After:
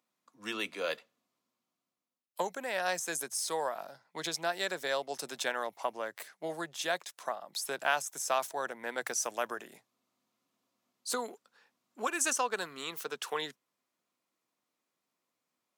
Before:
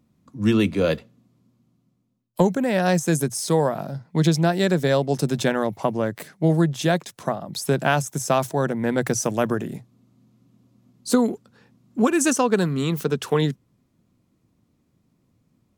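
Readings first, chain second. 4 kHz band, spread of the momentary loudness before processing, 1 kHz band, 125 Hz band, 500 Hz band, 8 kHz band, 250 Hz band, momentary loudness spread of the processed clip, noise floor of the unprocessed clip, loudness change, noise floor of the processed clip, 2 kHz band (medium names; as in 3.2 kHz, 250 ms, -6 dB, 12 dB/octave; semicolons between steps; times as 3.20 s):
-6.0 dB, 9 LU, -8.5 dB, -34.0 dB, -14.0 dB, -6.0 dB, -25.0 dB, 10 LU, -68 dBFS, -12.5 dB, under -85 dBFS, -6.0 dB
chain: high-pass 790 Hz 12 dB/octave; trim -6 dB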